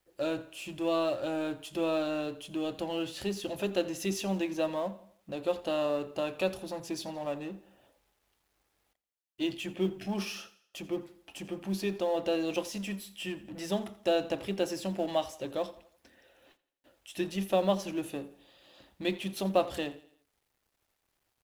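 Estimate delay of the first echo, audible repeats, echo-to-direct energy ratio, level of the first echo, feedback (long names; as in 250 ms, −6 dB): 85 ms, 3, −17.5 dB, −18.5 dB, 45%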